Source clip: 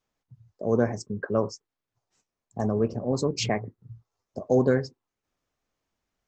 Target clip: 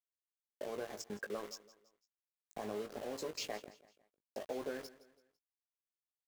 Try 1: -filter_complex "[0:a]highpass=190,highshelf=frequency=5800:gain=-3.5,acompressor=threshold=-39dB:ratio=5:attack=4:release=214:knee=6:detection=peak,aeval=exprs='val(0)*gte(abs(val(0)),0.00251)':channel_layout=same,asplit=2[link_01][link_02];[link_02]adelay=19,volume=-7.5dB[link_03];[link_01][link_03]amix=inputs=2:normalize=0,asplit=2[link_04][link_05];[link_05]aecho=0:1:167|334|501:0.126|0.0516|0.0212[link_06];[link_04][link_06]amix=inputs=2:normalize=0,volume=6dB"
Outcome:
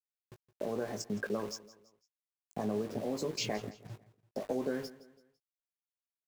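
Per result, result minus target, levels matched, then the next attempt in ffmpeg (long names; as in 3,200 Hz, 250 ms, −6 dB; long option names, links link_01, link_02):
250 Hz band +4.5 dB; downward compressor: peak gain reduction −4 dB
-filter_complex "[0:a]highpass=410,highshelf=frequency=5800:gain=-3.5,acompressor=threshold=-39dB:ratio=5:attack=4:release=214:knee=6:detection=peak,aeval=exprs='val(0)*gte(abs(val(0)),0.00251)':channel_layout=same,asplit=2[link_01][link_02];[link_02]adelay=19,volume=-7.5dB[link_03];[link_01][link_03]amix=inputs=2:normalize=0,asplit=2[link_04][link_05];[link_05]aecho=0:1:167|334|501:0.126|0.0516|0.0212[link_06];[link_04][link_06]amix=inputs=2:normalize=0,volume=6dB"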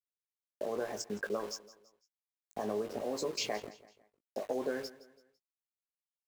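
downward compressor: peak gain reduction −6 dB
-filter_complex "[0:a]highpass=410,highshelf=frequency=5800:gain=-3.5,acompressor=threshold=-46.5dB:ratio=5:attack=4:release=214:knee=6:detection=peak,aeval=exprs='val(0)*gte(abs(val(0)),0.00251)':channel_layout=same,asplit=2[link_01][link_02];[link_02]adelay=19,volume=-7.5dB[link_03];[link_01][link_03]amix=inputs=2:normalize=0,asplit=2[link_04][link_05];[link_05]aecho=0:1:167|334|501:0.126|0.0516|0.0212[link_06];[link_04][link_06]amix=inputs=2:normalize=0,volume=6dB"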